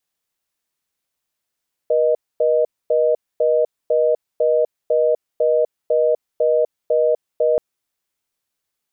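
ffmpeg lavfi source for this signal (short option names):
-f lavfi -i "aevalsrc='0.158*(sin(2*PI*480*t)+sin(2*PI*620*t))*clip(min(mod(t,0.5),0.25-mod(t,0.5))/0.005,0,1)':d=5.68:s=44100"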